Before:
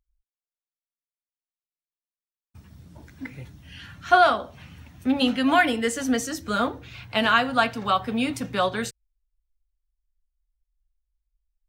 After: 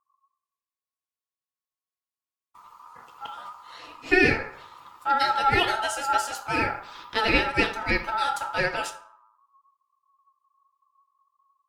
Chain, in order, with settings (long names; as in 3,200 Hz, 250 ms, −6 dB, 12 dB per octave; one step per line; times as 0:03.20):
rectangular room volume 700 cubic metres, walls furnished, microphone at 1.2 metres
ring modulation 1,100 Hz
0:03.31–0:03.76: double-tracking delay 14 ms −3 dB
pitch vibrato 12 Hz 35 cents